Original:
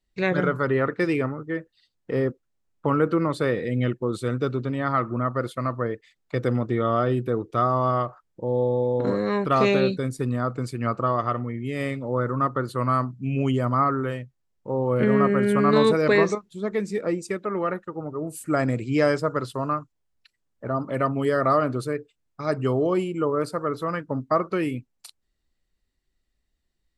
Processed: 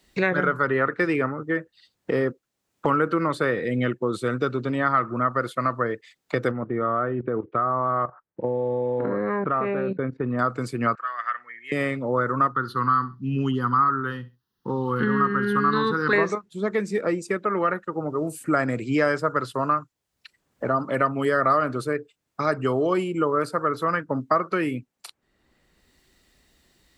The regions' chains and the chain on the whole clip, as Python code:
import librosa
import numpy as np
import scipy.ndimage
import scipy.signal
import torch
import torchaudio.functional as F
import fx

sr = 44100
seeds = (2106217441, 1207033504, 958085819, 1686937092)

y = fx.chain(x, sr, fx.block_float(bits=7),
    fx.lowpass(hz=1900.0, slope=24),
    fx.level_steps(step_db=14), at=(6.51, 10.39))
y = fx.chain(y, sr, fx.bandpass_q(hz=1700.0, q=5.5),
    fx.tilt_eq(slope=4.5), at=(10.95, 11.72))
y = fx.chain(y, sr, fx.fixed_phaser(hz=2300.0, stages=6),
    fx.echo_feedback(ms=66, feedback_pct=18, wet_db=-18.0), at=(12.52, 16.13))
y = fx.highpass(y, sr, hz=160.0, slope=6)
y = fx.dynamic_eq(y, sr, hz=1500.0, q=1.5, threshold_db=-40.0, ratio=4.0, max_db=7)
y = fx.band_squash(y, sr, depth_pct=70)